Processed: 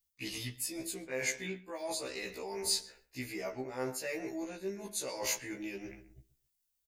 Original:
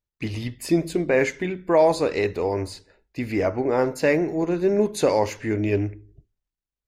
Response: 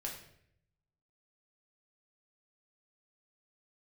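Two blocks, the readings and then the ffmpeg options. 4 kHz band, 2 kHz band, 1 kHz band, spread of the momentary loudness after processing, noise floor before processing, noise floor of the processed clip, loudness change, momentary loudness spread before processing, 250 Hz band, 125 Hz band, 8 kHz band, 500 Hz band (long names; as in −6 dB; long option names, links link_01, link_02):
−1.5 dB, −10.5 dB, −18.0 dB, 8 LU, below −85 dBFS, −82 dBFS, −14.5 dB, 12 LU, −18.0 dB, −20.0 dB, +2.0 dB, −19.0 dB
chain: -filter_complex "[0:a]asplit=2[link_01][link_02];[link_02]adelay=130,lowpass=frequency=2700:poles=1,volume=-17dB,asplit=2[link_03][link_04];[link_04]adelay=130,lowpass=frequency=2700:poles=1,volume=0.21[link_05];[link_01][link_03][link_05]amix=inputs=3:normalize=0,areverse,acompressor=threshold=-32dB:ratio=10,areverse,crystalizer=i=7:c=0,afftfilt=real='re*1.73*eq(mod(b,3),0)':imag='im*1.73*eq(mod(b,3),0)':win_size=2048:overlap=0.75,volume=-4dB"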